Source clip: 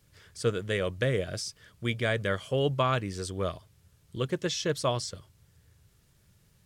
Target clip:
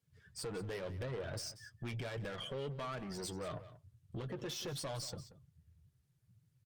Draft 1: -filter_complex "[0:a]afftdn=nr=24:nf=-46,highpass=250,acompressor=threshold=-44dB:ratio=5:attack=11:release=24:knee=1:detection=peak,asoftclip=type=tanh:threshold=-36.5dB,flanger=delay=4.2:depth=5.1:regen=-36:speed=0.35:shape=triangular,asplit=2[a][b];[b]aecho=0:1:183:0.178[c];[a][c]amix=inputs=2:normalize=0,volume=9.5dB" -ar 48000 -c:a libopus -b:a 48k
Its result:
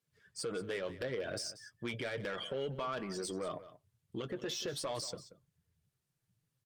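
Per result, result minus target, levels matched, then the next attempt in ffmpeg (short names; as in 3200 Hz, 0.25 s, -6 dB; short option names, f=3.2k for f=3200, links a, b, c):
125 Hz band -7.5 dB; soft clip: distortion -5 dB
-filter_complex "[0:a]afftdn=nr=24:nf=-46,highpass=97,acompressor=threshold=-44dB:ratio=5:attack=11:release=24:knee=1:detection=peak,asoftclip=type=tanh:threshold=-36.5dB,flanger=delay=4.2:depth=5.1:regen=-36:speed=0.35:shape=triangular,asplit=2[a][b];[b]aecho=0:1:183:0.178[c];[a][c]amix=inputs=2:normalize=0,volume=9.5dB" -ar 48000 -c:a libopus -b:a 48k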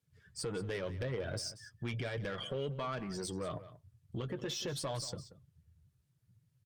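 soft clip: distortion -5 dB
-filter_complex "[0:a]afftdn=nr=24:nf=-46,highpass=97,acompressor=threshold=-44dB:ratio=5:attack=11:release=24:knee=1:detection=peak,asoftclip=type=tanh:threshold=-43.5dB,flanger=delay=4.2:depth=5.1:regen=-36:speed=0.35:shape=triangular,asplit=2[a][b];[b]aecho=0:1:183:0.178[c];[a][c]amix=inputs=2:normalize=0,volume=9.5dB" -ar 48000 -c:a libopus -b:a 48k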